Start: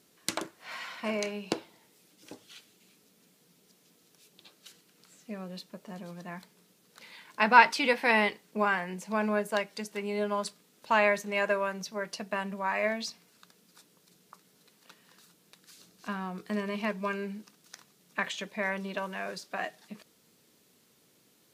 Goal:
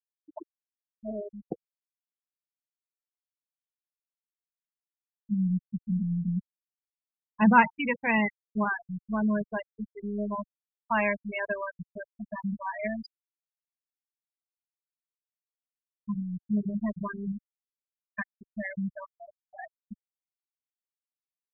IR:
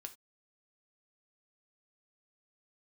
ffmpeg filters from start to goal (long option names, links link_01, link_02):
-filter_complex "[0:a]asplit=3[link_01][link_02][link_03];[link_01]afade=type=out:start_time=5.31:duration=0.02[link_04];[link_02]aemphasis=mode=reproduction:type=riaa,afade=type=in:start_time=5.31:duration=0.02,afade=type=out:start_time=7.76:duration=0.02[link_05];[link_03]afade=type=in:start_time=7.76:duration=0.02[link_06];[link_04][link_05][link_06]amix=inputs=3:normalize=0,afftfilt=real='re*gte(hypot(re,im),0.126)':imag='im*gte(hypot(re,im),0.126)':win_size=1024:overlap=0.75,asubboost=boost=11.5:cutoff=120"